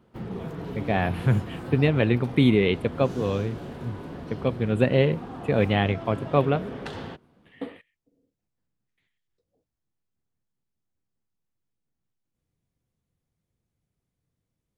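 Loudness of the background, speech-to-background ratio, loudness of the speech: -37.0 LUFS, 13.0 dB, -24.0 LUFS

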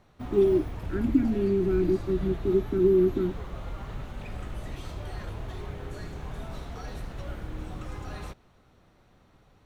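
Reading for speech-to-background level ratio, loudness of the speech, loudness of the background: 13.0 dB, -25.5 LUFS, -38.5 LUFS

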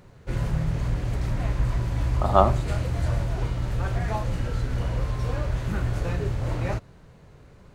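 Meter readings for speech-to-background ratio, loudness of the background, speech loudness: 5.0 dB, -28.0 LUFS, -23.0 LUFS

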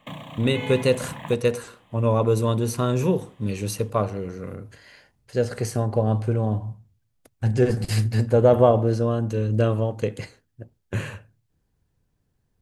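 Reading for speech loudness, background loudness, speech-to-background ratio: -23.5 LUFS, -36.5 LUFS, 13.0 dB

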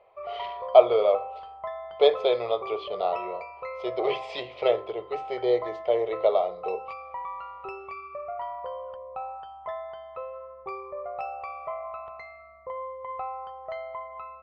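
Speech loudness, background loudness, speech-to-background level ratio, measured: -25.5 LUFS, -37.5 LUFS, 12.0 dB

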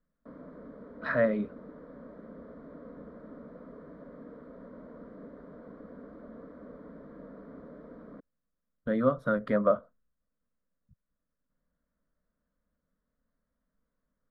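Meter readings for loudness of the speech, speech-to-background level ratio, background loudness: -28.5 LUFS, 20.0 dB, -48.5 LUFS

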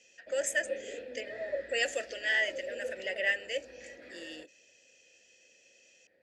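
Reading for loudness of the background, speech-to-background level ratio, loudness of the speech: -44.0 LUFS, 11.0 dB, -33.0 LUFS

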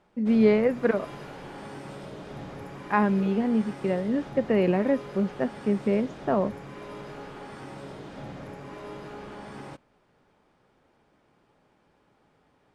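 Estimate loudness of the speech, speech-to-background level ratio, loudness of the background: -25.5 LUFS, 15.5 dB, -41.0 LUFS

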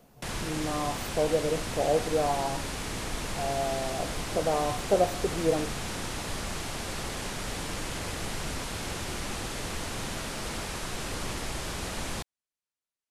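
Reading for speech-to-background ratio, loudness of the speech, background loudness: 4.5 dB, -30.0 LUFS, -34.5 LUFS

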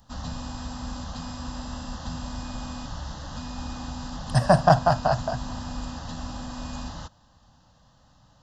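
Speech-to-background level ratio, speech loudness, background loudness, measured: 14.0 dB, -22.0 LUFS, -36.0 LUFS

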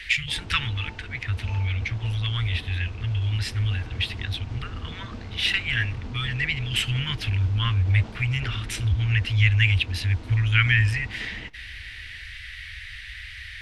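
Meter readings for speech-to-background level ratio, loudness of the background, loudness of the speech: 15.5 dB, -40.5 LUFS, -25.0 LUFS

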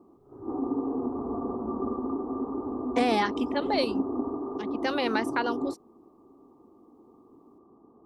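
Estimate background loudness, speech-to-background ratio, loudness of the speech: -32.0 LUFS, 2.5 dB, -29.5 LUFS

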